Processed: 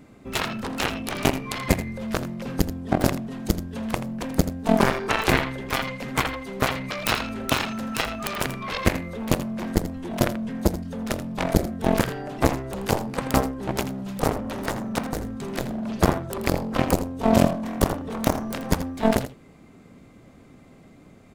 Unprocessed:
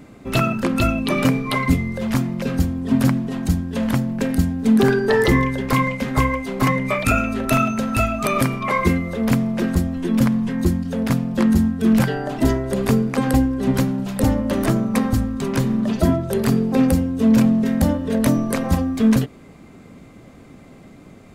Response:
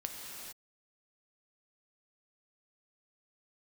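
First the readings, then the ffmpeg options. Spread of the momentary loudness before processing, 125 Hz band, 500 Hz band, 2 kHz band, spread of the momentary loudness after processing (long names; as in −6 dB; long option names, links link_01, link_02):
5 LU, −7.5 dB, −3.5 dB, −3.5 dB, 7 LU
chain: -af "aeval=exprs='0.531*(cos(1*acos(clip(val(0)/0.531,-1,1)))-cos(1*PI/2))+0.237*(cos(3*acos(clip(val(0)/0.531,-1,1)))-cos(3*PI/2))':channel_layout=same,aecho=1:1:82:0.237,volume=3dB"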